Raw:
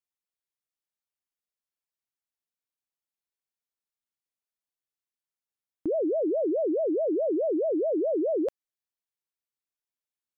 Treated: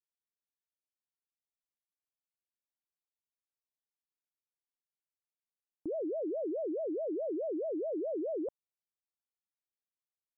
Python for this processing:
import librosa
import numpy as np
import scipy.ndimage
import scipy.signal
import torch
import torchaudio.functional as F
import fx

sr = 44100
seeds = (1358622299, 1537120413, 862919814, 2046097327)

y = scipy.signal.sosfilt(scipy.signal.butter(4, 1000.0, 'lowpass', fs=sr, output='sos'), x)
y = y * 10.0 ** (-9.0 / 20.0)